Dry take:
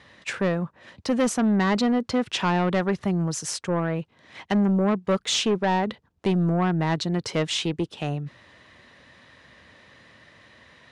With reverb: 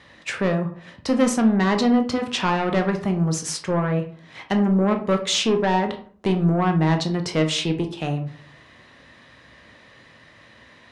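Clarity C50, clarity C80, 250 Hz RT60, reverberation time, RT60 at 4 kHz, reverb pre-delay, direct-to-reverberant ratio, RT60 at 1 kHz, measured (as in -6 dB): 10.0 dB, 15.0 dB, 0.50 s, 0.50 s, 0.25 s, 15 ms, 5.0 dB, 0.50 s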